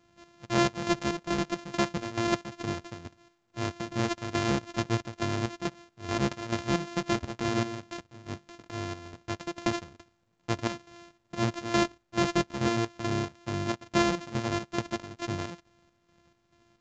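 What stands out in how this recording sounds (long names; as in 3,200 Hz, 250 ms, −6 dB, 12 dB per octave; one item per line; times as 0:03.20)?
a buzz of ramps at a fixed pitch in blocks of 128 samples
chopped level 2.3 Hz, depth 65%, duty 55%
mu-law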